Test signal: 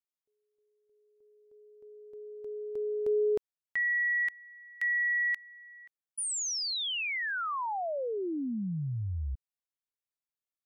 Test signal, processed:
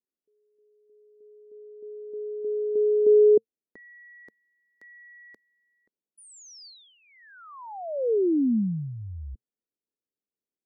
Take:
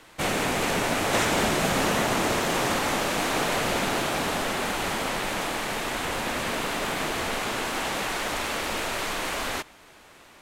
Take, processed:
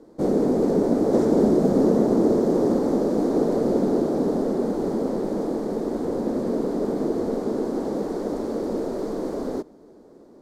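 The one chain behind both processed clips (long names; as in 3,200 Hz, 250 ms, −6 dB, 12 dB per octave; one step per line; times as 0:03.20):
drawn EQ curve 120 Hz 0 dB, 220 Hz +14 dB, 450 Hz +14 dB, 690 Hz +1 dB, 1,900 Hz −18 dB, 2,700 Hz −28 dB, 4,600 Hz −10 dB, 9,500 Hz −15 dB
level −3 dB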